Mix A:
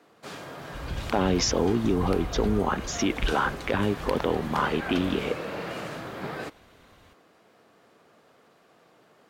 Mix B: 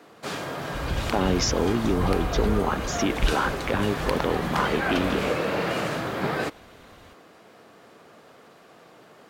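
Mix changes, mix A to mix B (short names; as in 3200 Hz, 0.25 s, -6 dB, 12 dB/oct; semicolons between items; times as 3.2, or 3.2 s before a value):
first sound +8.0 dB; second sound +5.0 dB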